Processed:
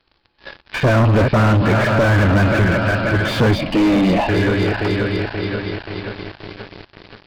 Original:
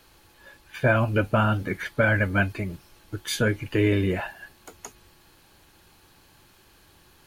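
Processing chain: backward echo that repeats 265 ms, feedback 79%, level -12 dB; 3.55–4.29 s: static phaser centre 400 Hz, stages 6; waveshaping leveller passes 5; resampled via 11.025 kHz; slew-rate limiter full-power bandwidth 210 Hz

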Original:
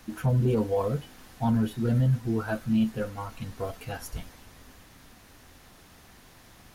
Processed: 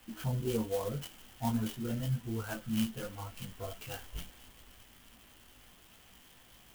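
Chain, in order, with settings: four-pole ladder low-pass 3.3 kHz, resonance 80%; chorus voices 4, 1.2 Hz, delay 19 ms, depth 3 ms; sampling jitter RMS 0.057 ms; trim +6.5 dB

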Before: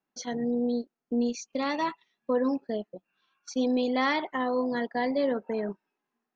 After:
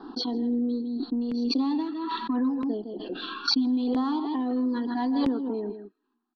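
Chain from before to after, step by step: steep low-pass 4.6 kHz 72 dB/octave; static phaser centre 580 Hz, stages 6; delay 159 ms -11.5 dB; in parallel at -9 dB: saturation -27.5 dBFS, distortion -14 dB; on the sum: compression 2.5:1, threshold -31 dBFS, peak gain reduction 6 dB; peaking EQ 280 Hz +10 dB 0.67 oct; feedback echo behind a high-pass 114 ms, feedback 36%, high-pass 1.4 kHz, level -21 dB; LFO notch saw down 0.76 Hz 290–2700 Hz; swell ahead of each attack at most 21 dB/s

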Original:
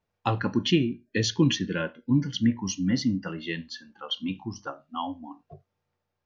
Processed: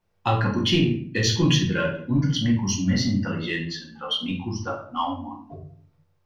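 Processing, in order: dynamic bell 300 Hz, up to -5 dB, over -33 dBFS, Q 0.79; in parallel at -9 dB: saturation -26.5 dBFS, distortion -9 dB; on the sum: simulated room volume 64 m³, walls mixed, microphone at 0.89 m

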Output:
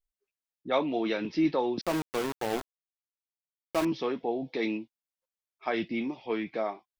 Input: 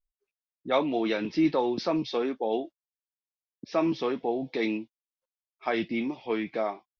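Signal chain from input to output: 1.81–3.85 s: small samples zeroed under -27 dBFS; trim -2 dB

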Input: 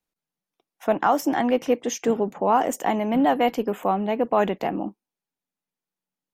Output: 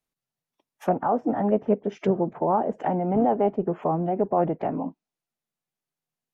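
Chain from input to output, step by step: formant-preserving pitch shift -3 st; low-pass that closes with the level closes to 790 Hz, closed at -20.5 dBFS

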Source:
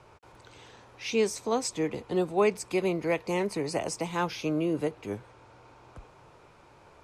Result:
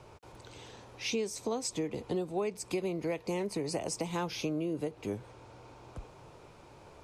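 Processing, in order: peaking EQ 1.5 kHz -6 dB 1.7 oct; compression 6:1, threshold -34 dBFS, peak gain reduction 12.5 dB; trim +3.5 dB

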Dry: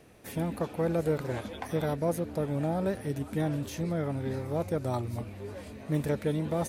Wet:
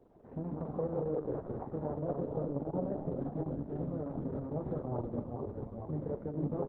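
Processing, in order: peak limiter -23.5 dBFS, peak gain reduction 6.5 dB; bass shelf 220 Hz -3.5 dB; band-stop 680 Hz, Q 12; doubling 39 ms -9.5 dB; ever faster or slower copies 137 ms, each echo -1 st, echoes 2; low-pass 1 kHz 24 dB/octave; 3.84–4.76 s: de-hum 63.2 Hz, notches 3; reverberation, pre-delay 3 ms, DRR 10 dB; trim -3.5 dB; Opus 6 kbps 48 kHz

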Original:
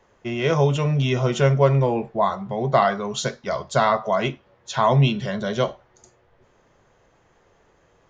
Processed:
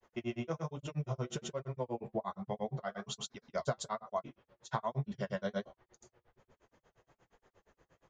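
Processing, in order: dynamic bell 2.9 kHz, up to -5 dB, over -38 dBFS, Q 0.86; compression 10:1, threshold -23 dBFS, peak gain reduction 12.5 dB; granulator, grains 8.5 per s, spray 100 ms, pitch spread up and down by 0 st; flange 1.2 Hz, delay 2.6 ms, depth 4.6 ms, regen -59%; trim -1.5 dB

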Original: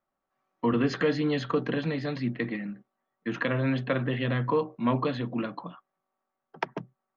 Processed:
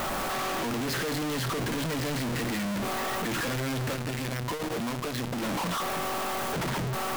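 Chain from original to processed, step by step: one-bit comparator; 3.93–5.42 s: transformer saturation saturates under 77 Hz

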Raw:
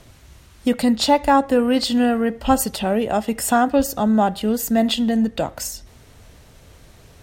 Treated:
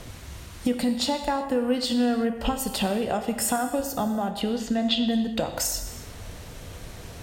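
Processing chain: compression 12:1, threshold -29 dBFS, peak gain reduction 19 dB; 4.41–5.07 s: resonant low-pass 3.9 kHz, resonance Q 1.6; reverberation, pre-delay 3 ms, DRR 6.5 dB; trim +6 dB

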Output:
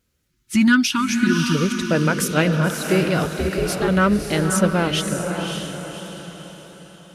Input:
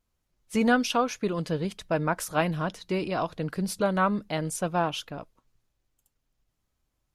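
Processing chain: 0.30–1.55 s: spectral selection erased 380–860 Hz; in parallel at -4.5 dB: saturation -24.5 dBFS, distortion -11 dB; 3.23–3.88 s: on the sum: ring modulator 230 Hz; high-pass 57 Hz; high-order bell 860 Hz -9.5 dB 1 oct; on a send: echo that smears into a reverb 576 ms, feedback 44%, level -5 dB; on the sum: endings held to a fixed fall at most 220 dB/s; trim +6.5 dB

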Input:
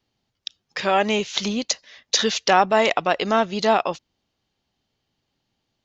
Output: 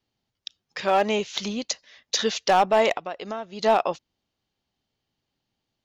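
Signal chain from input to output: dynamic bell 610 Hz, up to +5 dB, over -26 dBFS, Q 0.72; 2.92–3.63 s: compression 5:1, threshold -25 dBFS, peak gain reduction 13.5 dB; overload inside the chain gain 6 dB; trim -5 dB

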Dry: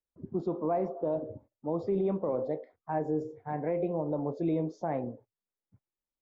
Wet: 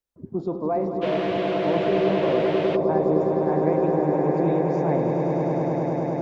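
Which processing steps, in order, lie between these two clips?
echo with a slow build-up 103 ms, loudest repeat 8, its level -6 dB; 1.01–2.75 s: band noise 280–3100 Hz -41 dBFS; trim +4.5 dB

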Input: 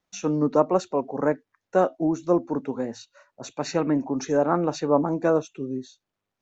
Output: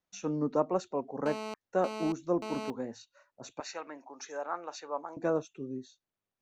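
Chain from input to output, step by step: 1.26–2.70 s: mobile phone buzz -30 dBFS; 3.60–5.17 s: high-pass 830 Hz 12 dB/octave; trim -8.5 dB

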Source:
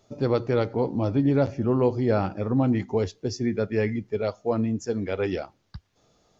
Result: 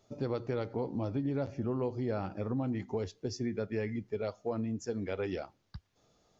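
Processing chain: compression 3:1, threshold -26 dBFS, peak gain reduction 7.5 dB; trim -5.5 dB

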